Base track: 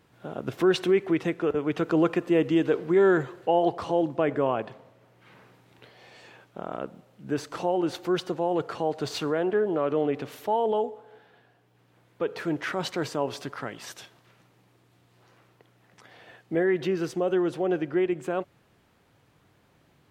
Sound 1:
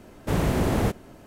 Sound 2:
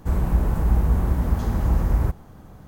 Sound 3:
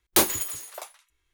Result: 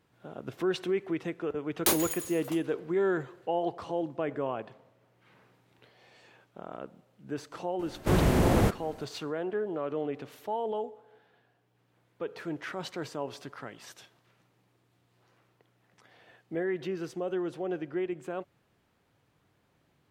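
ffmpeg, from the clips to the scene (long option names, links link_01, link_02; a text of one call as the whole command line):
ffmpeg -i bed.wav -i cue0.wav -i cue1.wav -i cue2.wav -filter_complex "[0:a]volume=-7.5dB[link_01];[3:a]atrim=end=1.33,asetpts=PTS-STARTPTS,volume=-6dB,afade=type=in:duration=0.004:curve=hsin,afade=type=out:start_time=1.326:duration=0.004:curve=hsin,adelay=1700[link_02];[1:a]atrim=end=1.26,asetpts=PTS-STARTPTS,volume=-0.5dB,afade=type=in:duration=0.004:curve=hsin,afade=type=out:start_time=1.256:duration=0.004:curve=hsin,adelay=7790[link_03];[link_01][link_02][link_03]amix=inputs=3:normalize=0" out.wav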